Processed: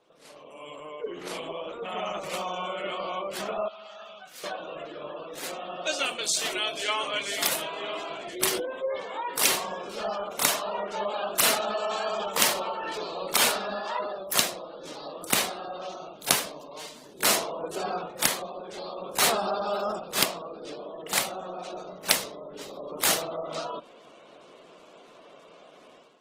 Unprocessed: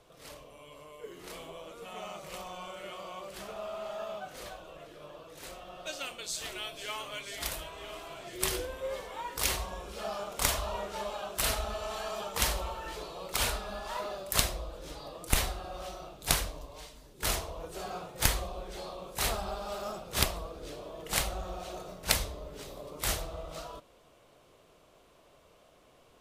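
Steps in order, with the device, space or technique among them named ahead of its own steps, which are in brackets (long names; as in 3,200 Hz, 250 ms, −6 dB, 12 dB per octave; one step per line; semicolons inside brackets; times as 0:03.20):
0:03.68–0:04.44: guitar amp tone stack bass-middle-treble 5-5-5
noise-suppressed video call (high-pass filter 180 Hz 24 dB per octave; gate on every frequency bin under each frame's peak −25 dB strong; automatic gain control gain up to 12.5 dB; level −2 dB; Opus 16 kbit/s 48,000 Hz)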